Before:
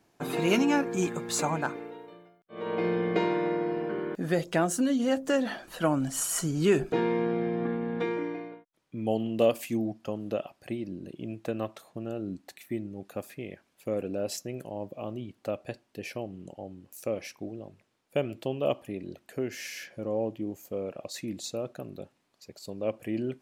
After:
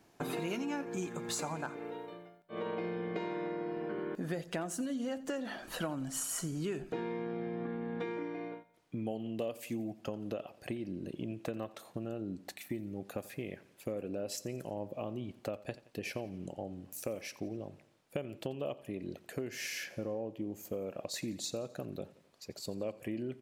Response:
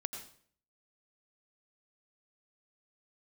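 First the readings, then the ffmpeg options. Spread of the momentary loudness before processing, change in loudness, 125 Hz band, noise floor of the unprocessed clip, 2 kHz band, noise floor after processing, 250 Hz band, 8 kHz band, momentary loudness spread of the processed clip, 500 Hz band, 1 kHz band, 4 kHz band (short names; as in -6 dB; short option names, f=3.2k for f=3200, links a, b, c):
15 LU, -8.5 dB, -7.0 dB, -72 dBFS, -7.5 dB, -65 dBFS, -8.5 dB, -6.0 dB, 7 LU, -9.0 dB, -9.0 dB, -5.5 dB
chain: -af "acompressor=threshold=-37dB:ratio=6,aecho=1:1:87|174|261|348:0.112|0.0583|0.0303|0.0158,volume=2dB"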